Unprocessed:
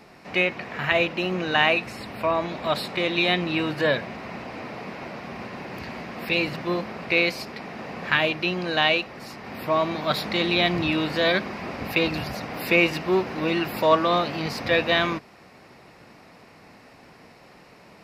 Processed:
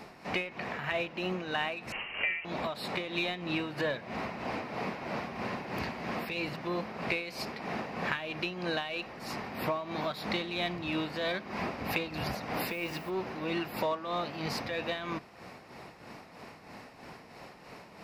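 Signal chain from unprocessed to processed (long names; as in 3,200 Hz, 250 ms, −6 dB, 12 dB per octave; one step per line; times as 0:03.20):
parametric band 890 Hz +2.5 dB
in parallel at −11 dB: hard clipping −21.5 dBFS, distortion −7 dB
on the sum: downward compressor 6 to 1, threshold −29 dBFS, peak gain reduction 17 dB
0:01.92–0:02.45: voice inversion scrambler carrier 3,000 Hz
on a send at −22 dB: convolution reverb RT60 3.2 s, pre-delay 5 ms
on the sum: amplitude tremolo 3.1 Hz, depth 57%
0:12.69–0:13.09: background noise violet −58 dBFS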